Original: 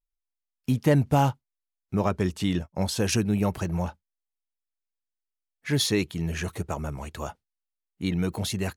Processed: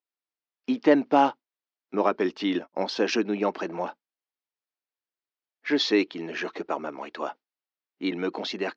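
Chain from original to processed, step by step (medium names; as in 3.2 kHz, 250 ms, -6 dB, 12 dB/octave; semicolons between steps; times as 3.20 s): elliptic band-pass 280–5300 Hz, stop band 40 dB; distance through air 130 m; trim +5 dB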